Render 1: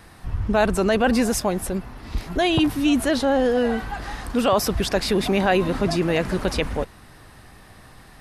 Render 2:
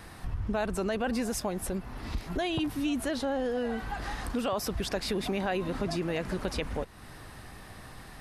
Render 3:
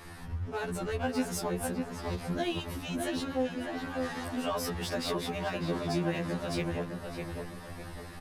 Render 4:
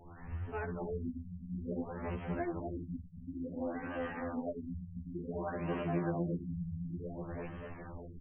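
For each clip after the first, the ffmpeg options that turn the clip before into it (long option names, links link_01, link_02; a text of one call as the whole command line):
ffmpeg -i in.wav -af "acompressor=threshold=-33dB:ratio=2.5" out.wav
ffmpeg -i in.wav -filter_complex "[0:a]asplit=2[link_01][link_02];[link_02]aeval=exprs='0.0178*(abs(mod(val(0)/0.0178+3,4)-2)-1)':channel_layout=same,volume=-10dB[link_03];[link_01][link_03]amix=inputs=2:normalize=0,asplit=2[link_04][link_05];[link_05]adelay=604,lowpass=frequency=2200:poles=1,volume=-4dB,asplit=2[link_06][link_07];[link_07]adelay=604,lowpass=frequency=2200:poles=1,volume=0.42,asplit=2[link_08][link_09];[link_09]adelay=604,lowpass=frequency=2200:poles=1,volume=0.42,asplit=2[link_10][link_11];[link_11]adelay=604,lowpass=frequency=2200:poles=1,volume=0.42,asplit=2[link_12][link_13];[link_13]adelay=604,lowpass=frequency=2200:poles=1,volume=0.42[link_14];[link_04][link_06][link_08][link_10][link_12][link_14]amix=inputs=6:normalize=0,afftfilt=real='re*2*eq(mod(b,4),0)':imag='im*2*eq(mod(b,4),0)':win_size=2048:overlap=0.75" out.wav
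ffmpeg -i in.wav -af "aecho=1:1:246:0.531,afftfilt=real='re*lt(b*sr/1024,210*pow(3300/210,0.5+0.5*sin(2*PI*0.56*pts/sr)))':imag='im*lt(b*sr/1024,210*pow(3300/210,0.5+0.5*sin(2*PI*0.56*pts/sr)))':win_size=1024:overlap=0.75,volume=-4.5dB" out.wav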